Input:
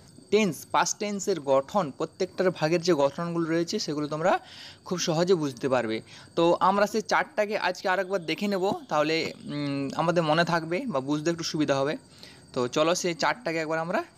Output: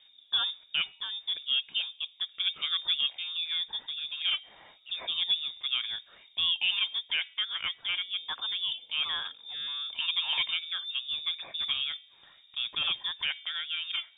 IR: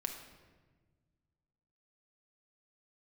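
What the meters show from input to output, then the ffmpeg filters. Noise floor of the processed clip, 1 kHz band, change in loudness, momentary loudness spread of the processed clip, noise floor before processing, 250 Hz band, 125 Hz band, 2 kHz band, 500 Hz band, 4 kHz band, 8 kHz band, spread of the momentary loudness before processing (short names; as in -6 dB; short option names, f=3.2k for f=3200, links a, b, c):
-60 dBFS, -19.0 dB, -3.5 dB, 7 LU, -53 dBFS, under -35 dB, under -30 dB, -4.5 dB, under -30 dB, +9.5 dB, under -40 dB, 8 LU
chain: -af "bandreject=f=304.9:t=h:w=4,bandreject=f=609.8:t=h:w=4,bandreject=f=914.7:t=h:w=4,bandreject=f=1.2196k:t=h:w=4,bandreject=f=1.5245k:t=h:w=4,bandreject=f=1.8294k:t=h:w=4,lowpass=f=3.2k:t=q:w=0.5098,lowpass=f=3.2k:t=q:w=0.6013,lowpass=f=3.2k:t=q:w=0.9,lowpass=f=3.2k:t=q:w=2.563,afreqshift=-3800,volume=-6.5dB"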